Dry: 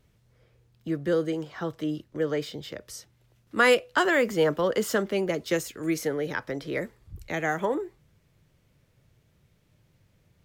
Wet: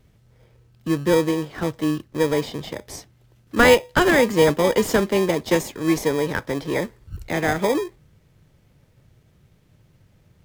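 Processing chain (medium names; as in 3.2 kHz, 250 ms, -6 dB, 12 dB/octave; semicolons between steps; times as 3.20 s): in parallel at -3 dB: sample-and-hold 31×; on the sum: trim +3.5 dB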